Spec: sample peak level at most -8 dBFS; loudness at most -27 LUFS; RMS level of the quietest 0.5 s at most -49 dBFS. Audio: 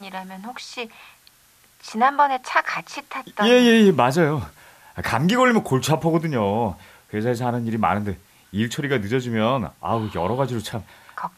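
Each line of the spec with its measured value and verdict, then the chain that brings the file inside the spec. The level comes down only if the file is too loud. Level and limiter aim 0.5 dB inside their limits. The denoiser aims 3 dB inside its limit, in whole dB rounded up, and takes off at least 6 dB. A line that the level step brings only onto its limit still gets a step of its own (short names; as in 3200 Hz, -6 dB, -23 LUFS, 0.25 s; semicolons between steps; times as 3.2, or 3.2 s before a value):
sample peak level -5.0 dBFS: fail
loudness -21.0 LUFS: fail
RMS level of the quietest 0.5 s -56 dBFS: OK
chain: gain -6.5 dB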